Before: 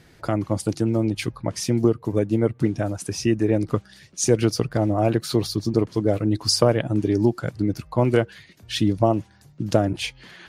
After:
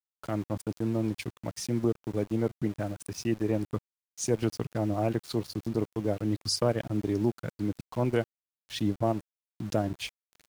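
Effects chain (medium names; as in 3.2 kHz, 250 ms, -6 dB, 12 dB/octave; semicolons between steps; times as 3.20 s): peaking EQ 210 Hz +2 dB 0.54 oct; transient shaper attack -4 dB, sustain -8 dB; small samples zeroed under -36.5 dBFS; trim -7 dB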